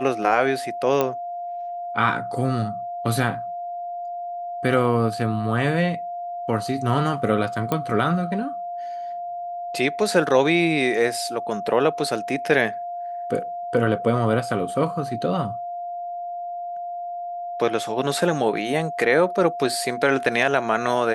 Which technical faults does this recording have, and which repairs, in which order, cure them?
whistle 700 Hz −28 dBFS
0:01.01: click −8 dBFS
0:07.72: click −10 dBFS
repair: click removal
notch filter 700 Hz, Q 30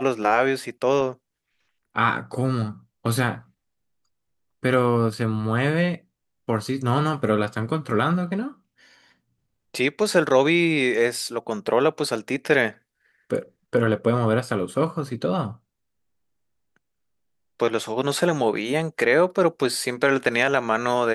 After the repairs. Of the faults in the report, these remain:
none of them is left

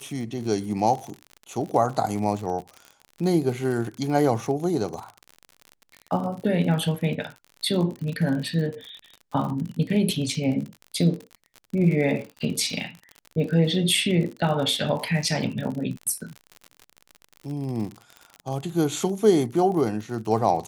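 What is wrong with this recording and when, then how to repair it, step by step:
surface crackle 50 per second −31 dBFS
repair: click removal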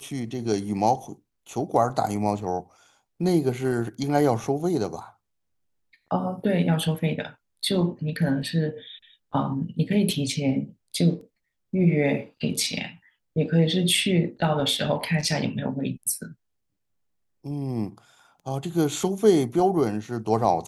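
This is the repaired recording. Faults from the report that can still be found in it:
none of them is left

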